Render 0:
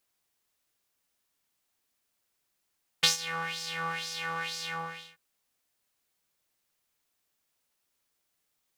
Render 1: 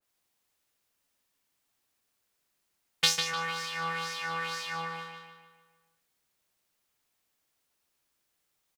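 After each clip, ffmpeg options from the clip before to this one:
-filter_complex "[0:a]asplit=2[s0][s1];[s1]adelay=150,lowpass=f=4100:p=1,volume=0.631,asplit=2[s2][s3];[s3]adelay=150,lowpass=f=4100:p=1,volume=0.52,asplit=2[s4][s5];[s5]adelay=150,lowpass=f=4100:p=1,volume=0.52,asplit=2[s6][s7];[s7]adelay=150,lowpass=f=4100:p=1,volume=0.52,asplit=2[s8][s9];[s9]adelay=150,lowpass=f=4100:p=1,volume=0.52,asplit=2[s10][s11];[s11]adelay=150,lowpass=f=4100:p=1,volume=0.52,asplit=2[s12][s13];[s13]adelay=150,lowpass=f=4100:p=1,volume=0.52[s14];[s0][s2][s4][s6][s8][s10][s12][s14]amix=inputs=8:normalize=0,adynamicequalizer=threshold=0.00794:dfrequency=2100:dqfactor=0.7:tfrequency=2100:tqfactor=0.7:attack=5:release=100:ratio=0.375:range=1.5:mode=cutabove:tftype=highshelf"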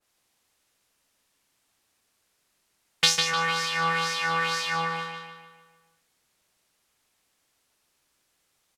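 -filter_complex "[0:a]lowpass=12000,asplit=2[s0][s1];[s1]alimiter=limit=0.15:level=0:latency=1:release=328,volume=1.12[s2];[s0][s2]amix=inputs=2:normalize=0,volume=1.19"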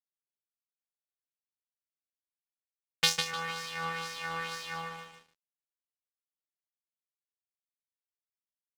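-af "aeval=exprs='0.891*(cos(1*acos(clip(val(0)/0.891,-1,1)))-cos(1*PI/2))+0.0631*(cos(7*acos(clip(val(0)/0.891,-1,1)))-cos(7*PI/2))':c=same,aeval=exprs='sgn(val(0))*max(abs(val(0))-0.00631,0)':c=same,volume=0.631"

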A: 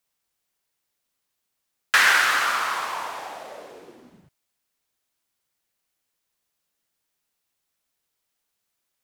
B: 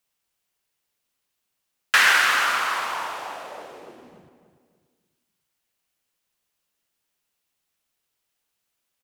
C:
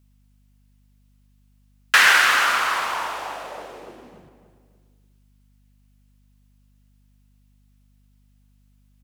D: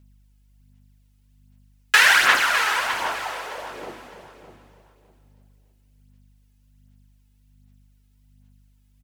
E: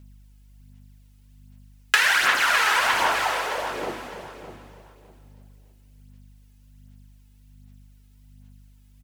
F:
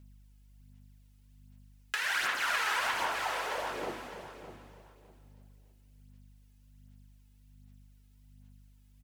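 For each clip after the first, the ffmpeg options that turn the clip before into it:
-filter_complex "[0:a]equalizer=f=2800:t=o:w=0.4:g=3,asplit=2[s0][s1];[s1]adelay=289,lowpass=f=2400:p=1,volume=0.355,asplit=2[s2][s3];[s3]adelay=289,lowpass=f=2400:p=1,volume=0.39,asplit=2[s4][s5];[s5]adelay=289,lowpass=f=2400:p=1,volume=0.39,asplit=2[s6][s7];[s7]adelay=289,lowpass=f=2400:p=1,volume=0.39[s8];[s0][s2][s4][s6][s8]amix=inputs=5:normalize=0"
-af "aeval=exprs='val(0)+0.001*(sin(2*PI*50*n/s)+sin(2*PI*2*50*n/s)/2+sin(2*PI*3*50*n/s)/3+sin(2*PI*4*50*n/s)/4+sin(2*PI*5*50*n/s)/5)':c=same,volume=1.33"
-filter_complex "[0:a]equalizer=f=1200:w=7.8:g=-6.5,aphaser=in_gain=1:out_gain=1:delay=2.4:decay=0.52:speed=1.3:type=sinusoidal,asplit=2[s0][s1];[s1]aecho=0:1:608|1216|1824:0.266|0.0612|0.0141[s2];[s0][s2]amix=inputs=2:normalize=0,volume=0.841"
-af "acompressor=threshold=0.0794:ratio=10,volume=2"
-af "alimiter=limit=0.224:level=0:latency=1:release=495,volume=0.447"

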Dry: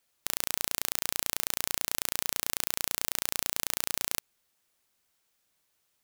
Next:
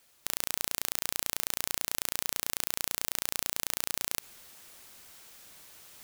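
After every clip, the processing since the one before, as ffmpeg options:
-af "areverse,acompressor=mode=upward:threshold=0.00282:ratio=2.5,areverse,alimiter=level_in=3.98:limit=0.891:release=50:level=0:latency=1,volume=0.841"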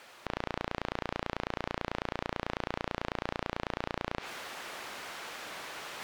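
-filter_complex "[0:a]acrossover=split=6200[s0][s1];[s1]acompressor=threshold=0.00631:ratio=4:attack=1:release=60[s2];[s0][s2]amix=inputs=2:normalize=0,asplit=2[s3][s4];[s4]highpass=f=720:p=1,volume=28.2,asoftclip=type=tanh:threshold=0.237[s5];[s3][s5]amix=inputs=2:normalize=0,lowpass=f=1600:p=1,volume=0.501,aemphasis=mode=reproduction:type=cd"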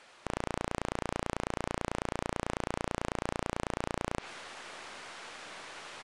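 -af "aeval=exprs='0.119*(cos(1*acos(clip(val(0)/0.119,-1,1)))-cos(1*PI/2))+0.0133*(cos(3*acos(clip(val(0)/0.119,-1,1)))-cos(3*PI/2))+0.0188*(cos(4*acos(clip(val(0)/0.119,-1,1)))-cos(4*PI/2))':c=same,aresample=22050,aresample=44100"

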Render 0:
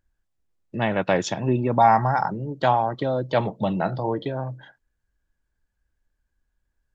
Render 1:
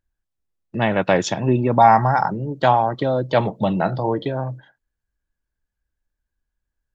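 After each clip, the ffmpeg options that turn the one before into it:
-af "agate=range=0.355:threshold=0.0126:ratio=16:detection=peak,volume=1.58"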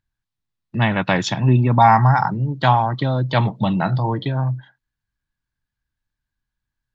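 -af "equalizer=f=125:t=o:w=1:g=12,equalizer=f=250:t=o:w=1:g=4,equalizer=f=500:t=o:w=1:g=-5,equalizer=f=1000:t=o:w=1:g=7,equalizer=f=2000:t=o:w=1:g=5,equalizer=f=4000:t=o:w=1:g=9,volume=0.562"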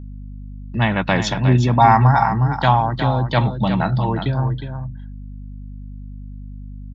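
-af "aecho=1:1:361:0.376,aeval=exprs='val(0)+0.0251*(sin(2*PI*50*n/s)+sin(2*PI*2*50*n/s)/2+sin(2*PI*3*50*n/s)/3+sin(2*PI*4*50*n/s)/4+sin(2*PI*5*50*n/s)/5)':c=same"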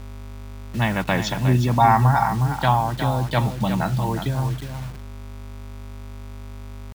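-af "acrusher=bits=5:mix=0:aa=0.000001,volume=0.668"

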